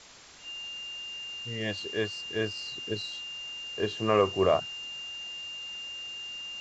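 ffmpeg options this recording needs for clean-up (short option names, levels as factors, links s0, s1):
-af "bandreject=f=2800:w=30,afftdn=nr=30:nf=-40"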